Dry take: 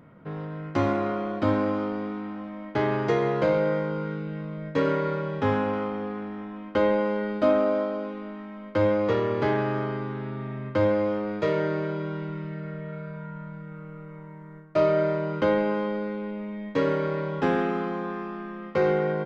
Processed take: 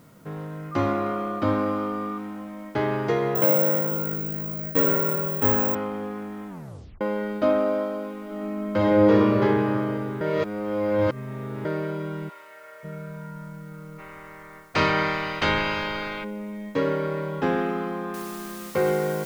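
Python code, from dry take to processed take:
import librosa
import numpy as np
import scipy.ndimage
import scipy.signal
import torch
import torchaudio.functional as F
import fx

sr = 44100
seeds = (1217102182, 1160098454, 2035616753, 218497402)

y = fx.dmg_tone(x, sr, hz=1200.0, level_db=-32.0, at=(0.71, 2.17), fade=0.02)
y = fx.resample_bad(y, sr, factor=2, down='filtered', up='zero_stuff', at=(3.35, 5.75))
y = fx.reverb_throw(y, sr, start_s=8.21, length_s=1.05, rt60_s=2.6, drr_db=-3.0)
y = fx.highpass(y, sr, hz=610.0, slope=24, at=(12.28, 12.83), fade=0.02)
y = fx.spec_clip(y, sr, under_db=29, at=(13.98, 16.23), fade=0.02)
y = fx.noise_floor_step(y, sr, seeds[0], at_s=18.14, before_db=-63, after_db=-43, tilt_db=0.0)
y = fx.edit(y, sr, fx.tape_stop(start_s=6.48, length_s=0.53),
    fx.reverse_span(start_s=10.21, length_s=1.44), tone=tone)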